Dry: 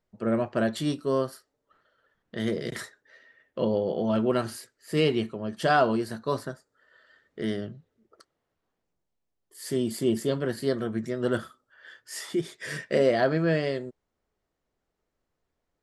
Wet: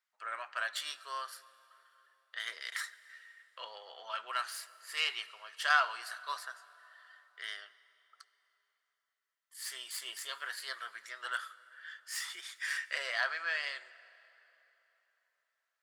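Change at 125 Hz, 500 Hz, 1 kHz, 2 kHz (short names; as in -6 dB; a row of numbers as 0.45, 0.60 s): under -40 dB, -25.0 dB, -6.5 dB, +1.0 dB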